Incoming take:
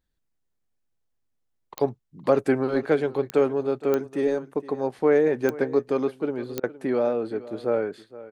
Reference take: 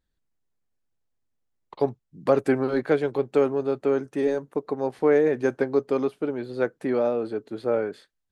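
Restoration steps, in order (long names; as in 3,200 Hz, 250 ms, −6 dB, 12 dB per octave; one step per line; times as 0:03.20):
click removal
repair the gap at 0:06.60, 33 ms
echo removal 466 ms −17.5 dB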